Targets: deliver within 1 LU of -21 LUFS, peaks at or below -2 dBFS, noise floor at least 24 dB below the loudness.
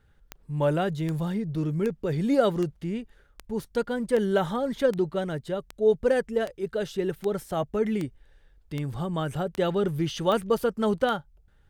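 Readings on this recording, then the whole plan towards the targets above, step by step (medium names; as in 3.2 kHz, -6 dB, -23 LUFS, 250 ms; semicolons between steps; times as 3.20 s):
clicks found 15; loudness -27.5 LUFS; peak level -9.0 dBFS; loudness target -21.0 LUFS
-> de-click; trim +6.5 dB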